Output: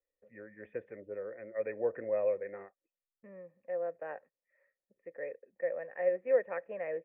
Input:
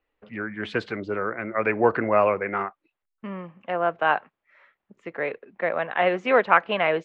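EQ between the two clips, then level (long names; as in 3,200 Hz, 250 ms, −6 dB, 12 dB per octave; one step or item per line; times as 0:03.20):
formant resonators in series e
high-frequency loss of the air 500 metres
low-shelf EQ 89 Hz +5.5 dB
−3.0 dB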